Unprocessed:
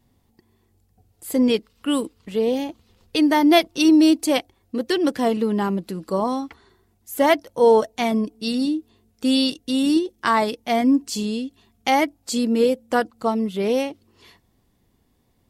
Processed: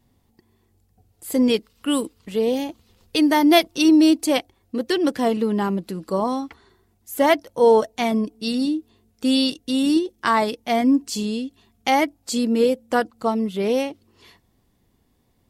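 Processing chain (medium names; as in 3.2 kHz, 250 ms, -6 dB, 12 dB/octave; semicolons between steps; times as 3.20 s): 1.32–3.78 s: treble shelf 5.6 kHz +5 dB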